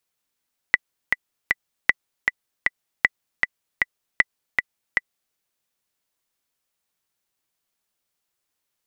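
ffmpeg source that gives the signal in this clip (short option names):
-f lavfi -i "aevalsrc='pow(10,(-1-4*gte(mod(t,3*60/156),60/156))/20)*sin(2*PI*1980*mod(t,60/156))*exp(-6.91*mod(t,60/156)/0.03)':d=4.61:s=44100"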